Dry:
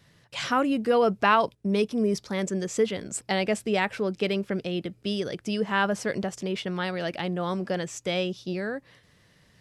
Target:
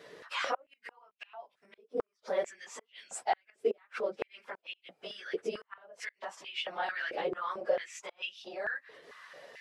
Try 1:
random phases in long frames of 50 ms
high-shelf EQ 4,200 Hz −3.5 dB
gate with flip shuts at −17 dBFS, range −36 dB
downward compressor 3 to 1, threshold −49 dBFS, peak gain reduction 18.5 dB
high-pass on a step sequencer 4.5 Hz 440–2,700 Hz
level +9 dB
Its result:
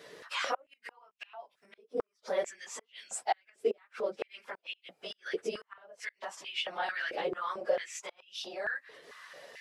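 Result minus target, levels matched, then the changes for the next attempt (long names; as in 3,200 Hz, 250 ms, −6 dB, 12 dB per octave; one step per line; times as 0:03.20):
8,000 Hz band +3.5 dB
change: high-shelf EQ 4,200 Hz −10.5 dB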